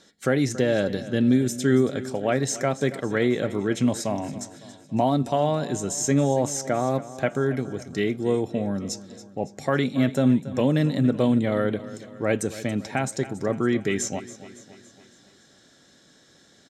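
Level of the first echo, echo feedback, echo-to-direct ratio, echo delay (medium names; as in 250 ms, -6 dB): -16.0 dB, 53%, -14.5 dB, 279 ms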